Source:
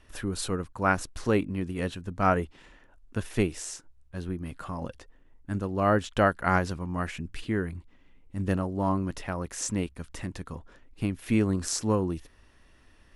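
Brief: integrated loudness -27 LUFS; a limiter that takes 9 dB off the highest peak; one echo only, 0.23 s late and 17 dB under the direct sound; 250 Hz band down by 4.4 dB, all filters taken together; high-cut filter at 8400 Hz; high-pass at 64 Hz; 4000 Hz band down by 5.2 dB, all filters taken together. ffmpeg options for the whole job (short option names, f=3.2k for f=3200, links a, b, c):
-af "highpass=64,lowpass=8.4k,equalizer=f=250:t=o:g=-6,equalizer=f=4k:t=o:g=-7,alimiter=limit=-18.5dB:level=0:latency=1,aecho=1:1:230:0.141,volume=7dB"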